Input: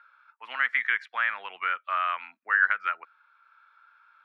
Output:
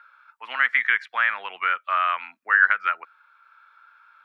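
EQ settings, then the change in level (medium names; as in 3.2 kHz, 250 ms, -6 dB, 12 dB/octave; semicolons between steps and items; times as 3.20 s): hum notches 60/120 Hz; +5.0 dB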